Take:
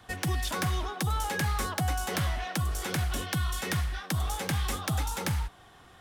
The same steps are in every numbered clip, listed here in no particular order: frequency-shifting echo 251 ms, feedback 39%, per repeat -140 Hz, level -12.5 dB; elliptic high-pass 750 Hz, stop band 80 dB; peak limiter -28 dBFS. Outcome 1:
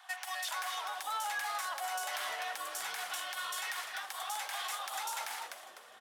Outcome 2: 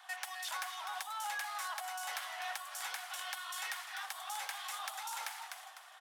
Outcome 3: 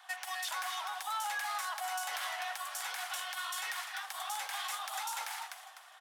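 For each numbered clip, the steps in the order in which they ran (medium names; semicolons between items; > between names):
elliptic high-pass > frequency-shifting echo > peak limiter; frequency-shifting echo > peak limiter > elliptic high-pass; frequency-shifting echo > elliptic high-pass > peak limiter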